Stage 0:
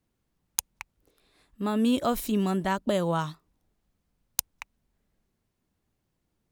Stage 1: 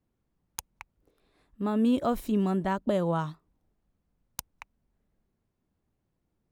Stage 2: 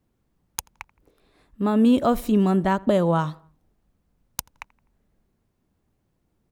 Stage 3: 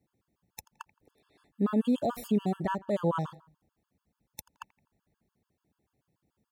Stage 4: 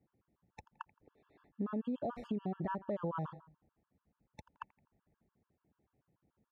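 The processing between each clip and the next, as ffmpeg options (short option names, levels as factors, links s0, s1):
-af "highshelf=f=2100:g=-11"
-filter_complex "[0:a]asplit=2[s0][s1];[s1]adelay=84,lowpass=f=2400:p=1,volume=0.0631,asplit=2[s2][s3];[s3]adelay=84,lowpass=f=2400:p=1,volume=0.51,asplit=2[s4][s5];[s5]adelay=84,lowpass=f=2400:p=1,volume=0.51[s6];[s0][s2][s4][s6]amix=inputs=4:normalize=0,volume=2.24"
-af "alimiter=limit=0.15:level=0:latency=1:release=146,highpass=84,afftfilt=real='re*gt(sin(2*PI*6.9*pts/sr)*(1-2*mod(floor(b*sr/1024/880),2)),0)':imag='im*gt(sin(2*PI*6.9*pts/sr)*(1-2*mod(floor(b*sr/1024/880),2)),0)':win_size=1024:overlap=0.75,volume=0.841"
-filter_complex "[0:a]lowpass=1900,asplit=2[s0][s1];[s1]alimiter=level_in=1.41:limit=0.0631:level=0:latency=1:release=96,volume=0.708,volume=1.12[s2];[s0][s2]amix=inputs=2:normalize=0,acompressor=threshold=0.0447:ratio=6,volume=0.447"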